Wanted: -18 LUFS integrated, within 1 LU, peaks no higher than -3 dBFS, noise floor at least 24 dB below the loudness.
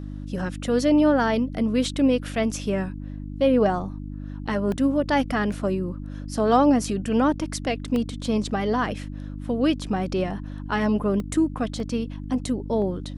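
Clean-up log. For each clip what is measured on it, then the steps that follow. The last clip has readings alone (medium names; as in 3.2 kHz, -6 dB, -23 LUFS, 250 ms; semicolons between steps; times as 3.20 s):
dropouts 6; longest dropout 1.2 ms; hum 50 Hz; highest harmonic 300 Hz; hum level -31 dBFS; loudness -24.0 LUFS; peak level -6.0 dBFS; loudness target -18.0 LUFS
-> interpolate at 4.72/5.52/7.96/11.20/11.80/12.82 s, 1.2 ms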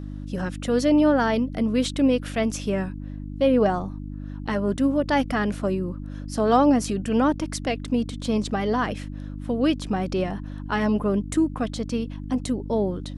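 dropouts 0; hum 50 Hz; highest harmonic 300 Hz; hum level -31 dBFS
-> de-hum 50 Hz, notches 6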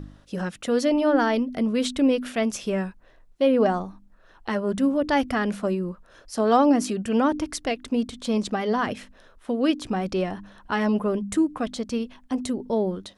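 hum not found; loudness -24.5 LUFS; peak level -7.0 dBFS; loudness target -18.0 LUFS
-> trim +6.5 dB; peak limiter -3 dBFS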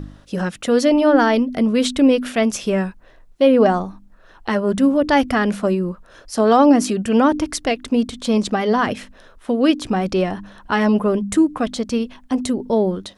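loudness -18.0 LUFS; peak level -3.0 dBFS; noise floor -48 dBFS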